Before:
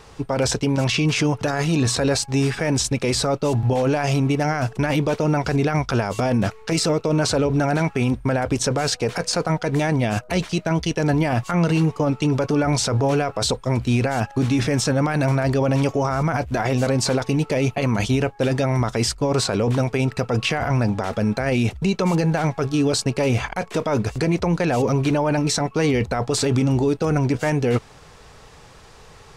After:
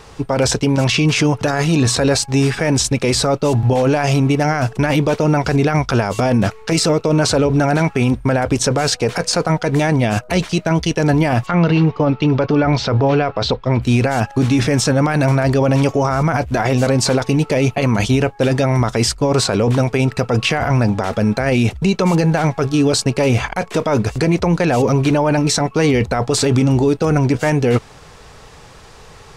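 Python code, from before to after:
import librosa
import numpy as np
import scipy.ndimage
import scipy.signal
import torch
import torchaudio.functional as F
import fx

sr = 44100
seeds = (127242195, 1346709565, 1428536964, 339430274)

y = fx.lowpass(x, sr, hz=4400.0, slope=24, at=(11.45, 13.81), fade=0.02)
y = y * librosa.db_to_amplitude(5.0)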